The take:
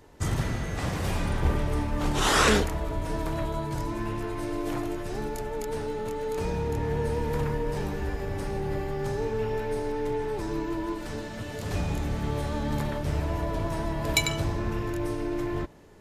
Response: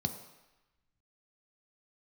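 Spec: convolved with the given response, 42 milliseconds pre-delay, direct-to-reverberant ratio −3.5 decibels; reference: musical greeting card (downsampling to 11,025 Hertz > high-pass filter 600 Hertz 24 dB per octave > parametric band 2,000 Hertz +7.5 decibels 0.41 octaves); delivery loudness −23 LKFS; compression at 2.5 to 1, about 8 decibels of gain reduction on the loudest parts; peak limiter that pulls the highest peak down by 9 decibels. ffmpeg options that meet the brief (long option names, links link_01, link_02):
-filter_complex "[0:a]acompressor=threshold=-29dB:ratio=2.5,alimiter=limit=-24dB:level=0:latency=1,asplit=2[link_01][link_02];[1:a]atrim=start_sample=2205,adelay=42[link_03];[link_02][link_03]afir=irnorm=-1:irlink=0,volume=0.5dB[link_04];[link_01][link_04]amix=inputs=2:normalize=0,aresample=11025,aresample=44100,highpass=frequency=600:width=0.5412,highpass=frequency=600:width=1.3066,equalizer=frequency=2000:width_type=o:width=0.41:gain=7.5,volume=11dB"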